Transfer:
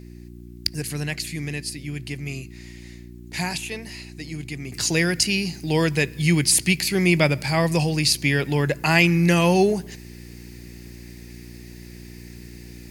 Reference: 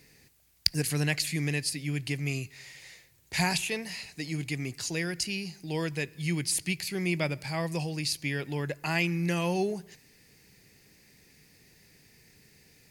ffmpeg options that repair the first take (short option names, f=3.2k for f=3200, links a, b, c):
-af "bandreject=f=59.5:t=h:w=4,bandreject=f=119:t=h:w=4,bandreject=f=178.5:t=h:w=4,bandreject=f=238:t=h:w=4,bandreject=f=297.5:t=h:w=4,bandreject=f=357:t=h:w=4,asetnsamples=n=441:p=0,asendcmd='4.72 volume volume -11dB',volume=0dB"